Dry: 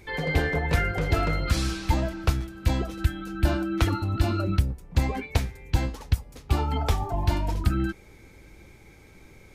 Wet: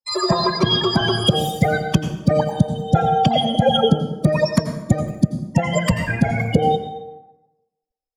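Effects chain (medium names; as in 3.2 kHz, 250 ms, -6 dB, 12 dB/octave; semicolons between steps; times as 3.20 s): expander on every frequency bin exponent 2; plain phase-vocoder stretch 2×; low-pass that closes with the level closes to 730 Hz, closed at -24.5 dBFS; in parallel at -1 dB: gain riding 0.5 s; on the sum: expander -48 dBFS; small resonant body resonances 230/1400/2000/3000 Hz, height 13 dB, ringing for 50 ms; speed mistake 33 rpm record played at 78 rpm; tape echo 149 ms, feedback 47%, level -21 dB, low-pass 1.7 kHz; plate-style reverb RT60 0.95 s, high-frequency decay 0.65×, pre-delay 75 ms, DRR 7 dB; trim +4.5 dB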